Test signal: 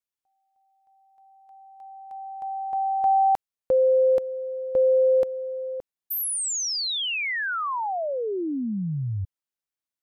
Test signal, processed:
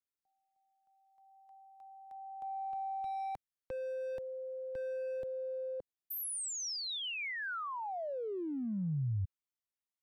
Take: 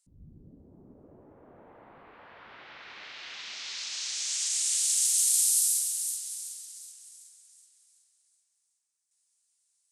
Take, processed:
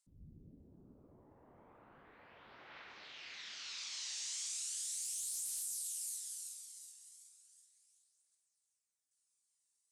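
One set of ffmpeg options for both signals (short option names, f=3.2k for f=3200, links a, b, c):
-filter_complex "[0:a]volume=17dB,asoftclip=hard,volume=-17dB,aphaser=in_gain=1:out_gain=1:delay=1.1:decay=0.32:speed=0.36:type=triangular,acrossover=split=150[a][b];[b]acompressor=threshold=-28dB:ratio=10:attack=0.39:release=26:knee=2.83:detection=peak[c];[a][c]amix=inputs=2:normalize=0,volume=-8.5dB"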